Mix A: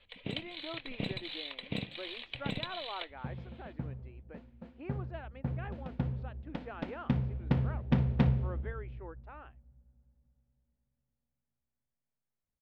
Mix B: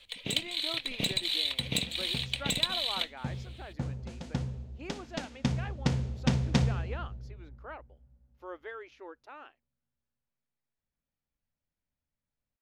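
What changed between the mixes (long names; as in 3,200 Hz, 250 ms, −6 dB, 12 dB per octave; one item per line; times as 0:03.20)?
second sound: entry −1.65 s
master: remove high-frequency loss of the air 490 metres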